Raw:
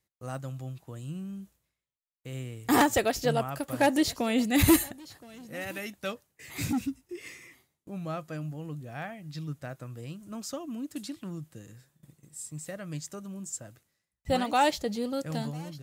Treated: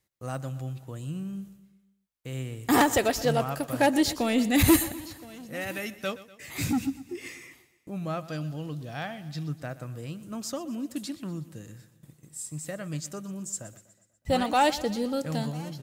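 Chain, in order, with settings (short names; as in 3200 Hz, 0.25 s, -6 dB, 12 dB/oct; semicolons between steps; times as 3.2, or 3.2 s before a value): 8.24–9.29 band shelf 4100 Hz +8.5 dB 1.1 oct; in parallel at -7 dB: soft clip -27 dBFS, distortion -6 dB; on the sum: feedback echo 0.122 s, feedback 54%, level -17 dB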